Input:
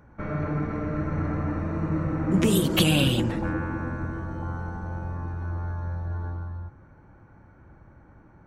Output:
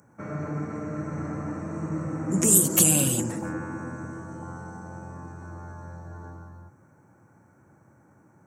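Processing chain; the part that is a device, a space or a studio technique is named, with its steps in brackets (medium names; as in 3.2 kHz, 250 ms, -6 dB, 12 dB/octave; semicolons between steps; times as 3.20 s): budget condenser microphone (high-pass 110 Hz 24 dB/octave; resonant high shelf 5.2 kHz +13.5 dB, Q 3); trim -3 dB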